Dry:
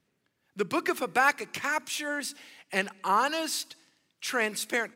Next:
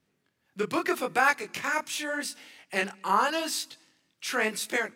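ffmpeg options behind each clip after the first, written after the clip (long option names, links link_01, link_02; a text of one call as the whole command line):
ffmpeg -i in.wav -af "flanger=delay=19:depth=7:speed=0.83,volume=3.5dB" out.wav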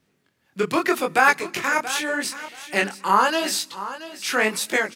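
ffmpeg -i in.wav -af "aecho=1:1:679|1358:0.2|0.0339,volume=6.5dB" out.wav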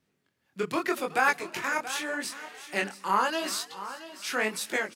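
ffmpeg -i in.wav -filter_complex "[0:a]asplit=5[link_01][link_02][link_03][link_04][link_05];[link_02]adelay=369,afreqshift=150,volume=-19dB[link_06];[link_03]adelay=738,afreqshift=300,volume=-25.7dB[link_07];[link_04]adelay=1107,afreqshift=450,volume=-32.5dB[link_08];[link_05]adelay=1476,afreqshift=600,volume=-39.2dB[link_09];[link_01][link_06][link_07][link_08][link_09]amix=inputs=5:normalize=0,volume=-7.5dB" out.wav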